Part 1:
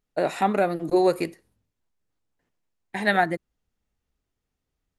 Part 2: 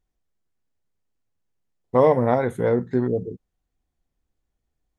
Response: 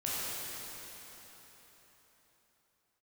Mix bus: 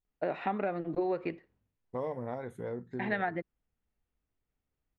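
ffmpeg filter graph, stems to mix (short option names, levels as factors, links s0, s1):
-filter_complex "[0:a]lowpass=f=3000:w=0.5412,lowpass=f=3000:w=1.3066,adelay=50,volume=0.531[s0];[1:a]acompressor=threshold=0.0501:ratio=1.5,volume=0.2[s1];[s0][s1]amix=inputs=2:normalize=0,acompressor=threshold=0.0398:ratio=6"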